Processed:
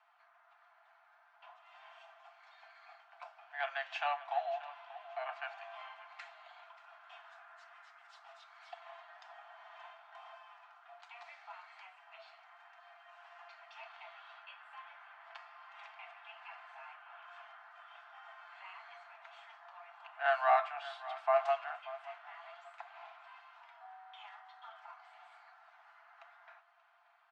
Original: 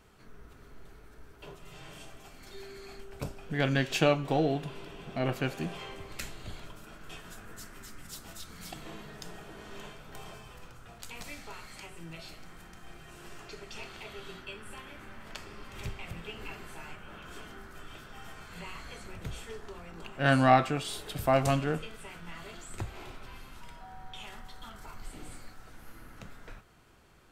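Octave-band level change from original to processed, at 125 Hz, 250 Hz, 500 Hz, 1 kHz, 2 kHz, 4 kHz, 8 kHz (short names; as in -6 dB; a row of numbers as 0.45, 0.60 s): under -40 dB, under -40 dB, -6.5 dB, -3.5 dB, -6.0 dB, -12.0 dB, under -25 dB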